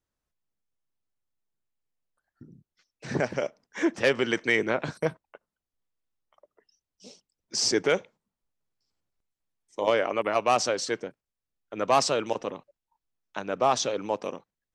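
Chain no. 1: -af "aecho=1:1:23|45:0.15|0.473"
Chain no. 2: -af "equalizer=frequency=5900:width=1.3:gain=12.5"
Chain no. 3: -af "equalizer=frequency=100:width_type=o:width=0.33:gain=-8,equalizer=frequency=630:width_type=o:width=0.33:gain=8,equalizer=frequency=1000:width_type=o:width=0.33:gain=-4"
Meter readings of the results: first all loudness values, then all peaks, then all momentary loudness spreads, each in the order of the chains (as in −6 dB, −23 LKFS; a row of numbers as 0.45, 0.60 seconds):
−26.0, −23.0, −25.0 LKFS; −6.5, −3.0, −8.0 dBFS; 16, 21, 15 LU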